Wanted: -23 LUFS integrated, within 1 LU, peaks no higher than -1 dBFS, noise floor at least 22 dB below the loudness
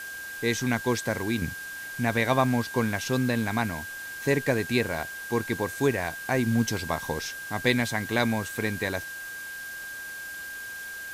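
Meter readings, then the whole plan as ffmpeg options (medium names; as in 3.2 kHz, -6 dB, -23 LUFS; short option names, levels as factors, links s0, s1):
steady tone 1.6 kHz; tone level -36 dBFS; noise floor -38 dBFS; noise floor target -50 dBFS; loudness -28.0 LUFS; peak level -8.0 dBFS; loudness target -23.0 LUFS
-> -af "bandreject=f=1600:w=30"
-af "afftdn=nr=12:nf=-38"
-af "volume=1.78"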